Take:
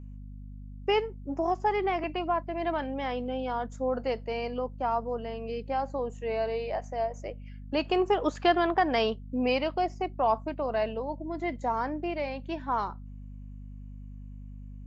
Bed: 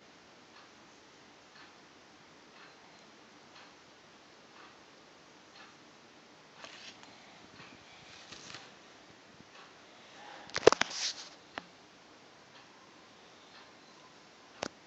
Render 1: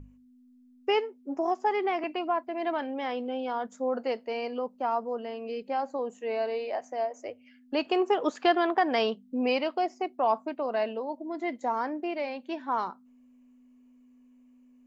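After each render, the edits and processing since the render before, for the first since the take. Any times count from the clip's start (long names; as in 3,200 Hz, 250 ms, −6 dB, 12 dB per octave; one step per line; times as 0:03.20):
mains-hum notches 50/100/150/200 Hz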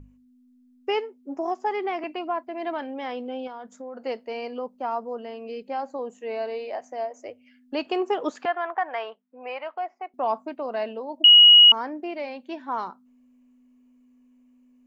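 0:03.47–0:04.03: downward compressor 3 to 1, threshold −36 dBFS
0:08.45–0:10.14: flat-topped band-pass 1,200 Hz, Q 0.79
0:11.24–0:11.72: beep over 2,900 Hz −8 dBFS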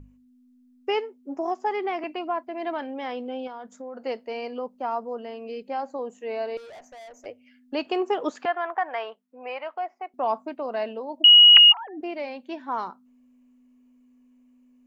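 0:06.57–0:07.26: tube saturation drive 42 dB, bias 0.3
0:11.56–0:12.01: three sine waves on the formant tracks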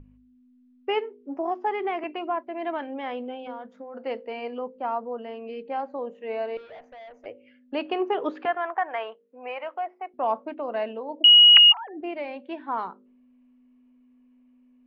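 low-pass filter 3,400 Hz 24 dB per octave
hum removal 51.65 Hz, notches 11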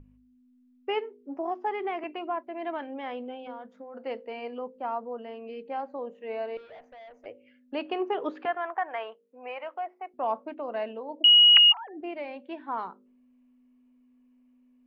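level −3.5 dB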